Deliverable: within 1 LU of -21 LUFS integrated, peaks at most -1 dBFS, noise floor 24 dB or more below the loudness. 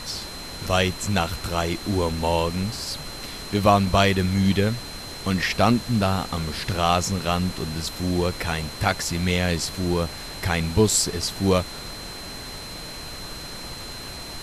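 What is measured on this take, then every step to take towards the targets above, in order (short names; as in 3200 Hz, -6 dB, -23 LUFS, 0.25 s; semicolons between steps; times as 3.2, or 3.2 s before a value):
steady tone 4100 Hz; tone level -38 dBFS; noise floor -36 dBFS; noise floor target -48 dBFS; loudness -23.5 LUFS; peak -4.0 dBFS; loudness target -21.0 LUFS
-> notch 4100 Hz, Q 30; noise print and reduce 12 dB; gain +2.5 dB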